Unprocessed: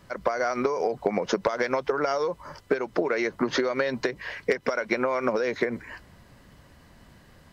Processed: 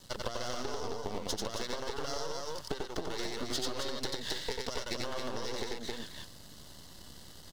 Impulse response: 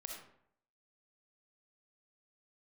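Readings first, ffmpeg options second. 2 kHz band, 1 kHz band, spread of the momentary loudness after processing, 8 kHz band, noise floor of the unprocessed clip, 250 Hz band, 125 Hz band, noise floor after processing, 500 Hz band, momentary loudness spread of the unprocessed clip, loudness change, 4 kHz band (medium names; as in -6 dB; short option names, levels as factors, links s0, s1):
-13.5 dB, -11.0 dB, 15 LU, no reading, -55 dBFS, -11.5 dB, -3.5 dB, -51 dBFS, -13.5 dB, 6 LU, -10.5 dB, +2.0 dB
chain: -filter_complex "[0:a]aeval=exprs='max(val(0),0)':c=same,asplit=2[s0][s1];[s1]aecho=0:1:90.38|268.2:0.794|0.562[s2];[s0][s2]amix=inputs=2:normalize=0,acompressor=threshold=0.0251:ratio=6,highshelf=f=2800:t=q:w=1.5:g=10,bandreject=f=2400:w=6.5"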